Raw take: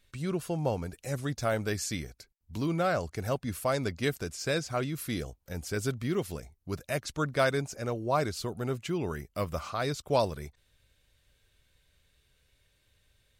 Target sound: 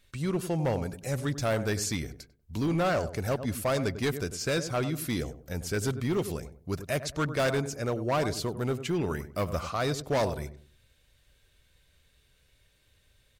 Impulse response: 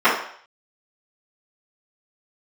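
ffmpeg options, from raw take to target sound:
-filter_complex "[0:a]asplit=2[a][b];[b]adelay=97,lowpass=f=840:p=1,volume=-11dB,asplit=2[c][d];[d]adelay=97,lowpass=f=840:p=1,volume=0.33,asplit=2[e][f];[f]adelay=97,lowpass=f=840:p=1,volume=0.33,asplit=2[g][h];[h]adelay=97,lowpass=f=840:p=1,volume=0.33[i];[a][c][e][g][i]amix=inputs=5:normalize=0,volume=25.5dB,asoftclip=hard,volume=-25.5dB,volume=3dB"

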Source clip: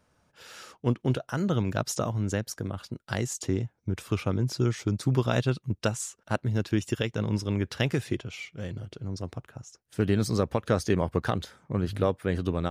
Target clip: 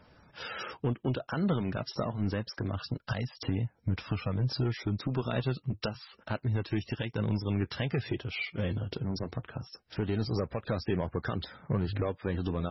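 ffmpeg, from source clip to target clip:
-filter_complex "[0:a]asettb=1/sr,asplit=3[a][b][c];[a]atrim=end=2.704[d];[b]atrim=start=2.7:end=4.63,asetpts=PTS-STARTPTS,afade=t=in:d=0.004:c=qsin,afade=t=out:st=1.926:d=0.004:c=qsin,equalizer=f=370:t=o:w=0.2:g=-10[e];[c]atrim=start=4.626[f];[d][e]acrossfade=d=0.004:c1=hsin:c2=qsin[g];[g][f]acrossfade=d=0.004:c1=qsin:c2=hsin,asplit=2[h][i];[i]acompressor=threshold=-39dB:ratio=10,volume=2.5dB[j];[h][j]amix=inputs=2:normalize=0,alimiter=limit=-19dB:level=0:latency=1:release=366,asoftclip=type=tanh:threshold=-21.5dB,flanger=delay=0.1:depth=5.2:regen=-69:speed=0.27:shape=triangular,volume=6dB" -ar 24000 -c:a libmp3lame -b:a 16k

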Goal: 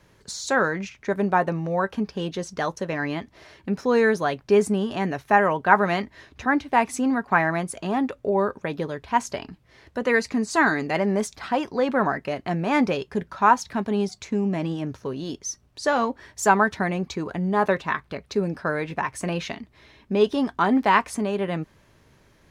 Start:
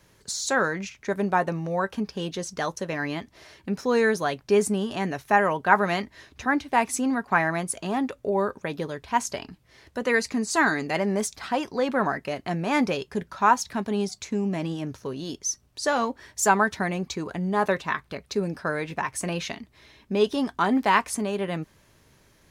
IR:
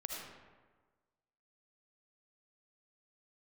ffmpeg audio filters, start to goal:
-af "highshelf=f=4.7k:g=-9.5,volume=2.5dB"

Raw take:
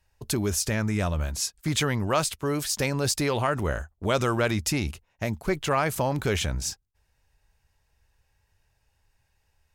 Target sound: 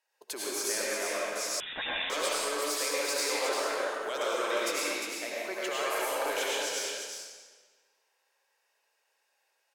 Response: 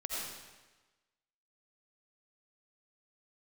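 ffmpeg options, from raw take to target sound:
-filter_complex "[0:a]highpass=f=430:w=0.5412,highpass=f=430:w=1.3066,acrossover=split=2800[a][b];[a]alimiter=limit=-22.5dB:level=0:latency=1:release=13[c];[b]asoftclip=type=tanh:threshold=-23dB[d];[c][d]amix=inputs=2:normalize=0,aecho=1:1:352:0.501[e];[1:a]atrim=start_sample=2205,asetrate=37044,aresample=44100[f];[e][f]afir=irnorm=-1:irlink=0,asettb=1/sr,asplit=3[g][h][i];[g]atrim=end=1.604[j];[h]atrim=start=1.6:end=2.1,asetpts=PTS-STARTPTS,afade=t=in:d=0.004:c=qsin,afade=t=out:st=0.496:d=0.004:c=qsin,lowpass=f=3.4k:t=q:w=0.5098,lowpass=f=3.4k:t=q:w=0.6013,lowpass=f=3.4k:t=q:w=0.9,lowpass=f=3.4k:t=q:w=2.563,afreqshift=-4000[k];[i]atrim=start=2.096[l];[j][k]acrossfade=d=0.004:c1=hsin:c2=qsin[m];[m][l]acrossfade=d=0.004:c1=qsin:c2=hsin,volume=-4dB"

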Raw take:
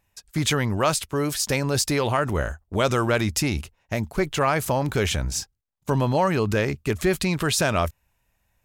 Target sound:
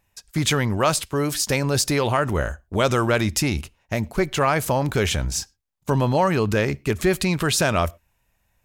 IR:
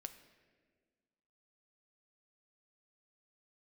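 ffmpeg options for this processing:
-filter_complex "[0:a]asplit=2[a][b];[1:a]atrim=start_sample=2205,afade=t=out:st=0.2:d=0.01,atrim=end_sample=9261,asetrate=52920,aresample=44100[c];[b][c]afir=irnorm=-1:irlink=0,volume=-6dB[d];[a][d]amix=inputs=2:normalize=0"

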